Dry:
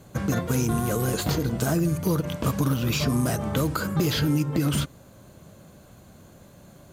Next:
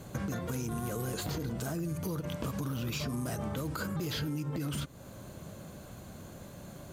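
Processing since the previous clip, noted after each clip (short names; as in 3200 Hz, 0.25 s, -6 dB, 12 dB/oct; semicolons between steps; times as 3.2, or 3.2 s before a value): limiter -20 dBFS, peak gain reduction 7 dB; compressor 3:1, threshold -38 dBFS, peak gain reduction 10.5 dB; gain +2.5 dB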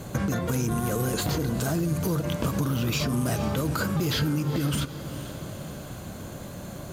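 diffused feedback echo 0.455 s, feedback 56%, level -13 dB; gain +8.5 dB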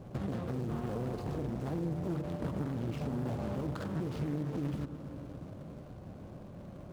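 median filter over 25 samples; analogue delay 0.1 s, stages 1024, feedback 77%, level -13 dB; Doppler distortion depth 0.57 ms; gain -9 dB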